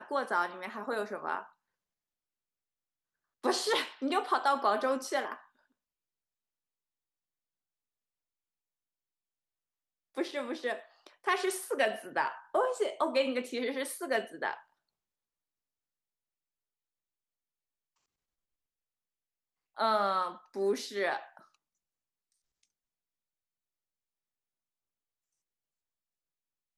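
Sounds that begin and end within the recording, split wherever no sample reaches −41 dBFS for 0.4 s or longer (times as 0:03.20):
0:03.44–0:05.36
0:10.17–0:14.59
0:19.77–0:21.37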